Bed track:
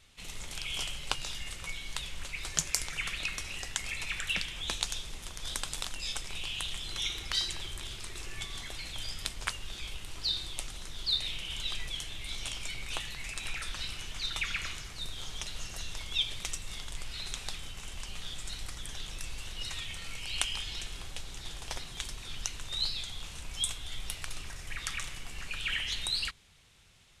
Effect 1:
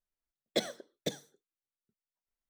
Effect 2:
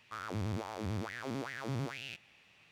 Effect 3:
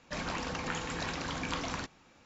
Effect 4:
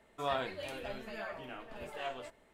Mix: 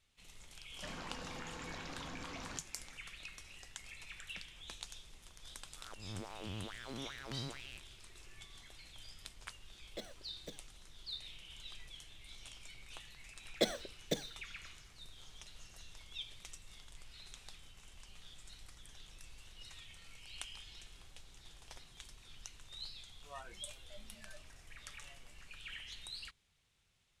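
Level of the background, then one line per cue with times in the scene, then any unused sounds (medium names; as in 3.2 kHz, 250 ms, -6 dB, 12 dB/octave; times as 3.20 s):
bed track -15 dB
0.72 s: add 3 -3 dB + compression, threshold -40 dBFS
5.63 s: add 2 -7.5 dB + slow attack 233 ms
9.41 s: add 1 -18 dB + waveshaping leveller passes 1
13.05 s: add 1 -1 dB
23.05 s: add 4 -10.5 dB + spectral noise reduction 16 dB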